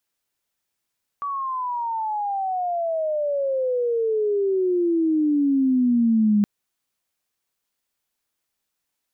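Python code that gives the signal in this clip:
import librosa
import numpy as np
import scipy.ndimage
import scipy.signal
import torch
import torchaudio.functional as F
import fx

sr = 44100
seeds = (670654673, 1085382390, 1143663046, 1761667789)

y = fx.riser_tone(sr, length_s=5.22, level_db=-14.5, wave='sine', hz=1150.0, rise_st=-30.0, swell_db=10.0)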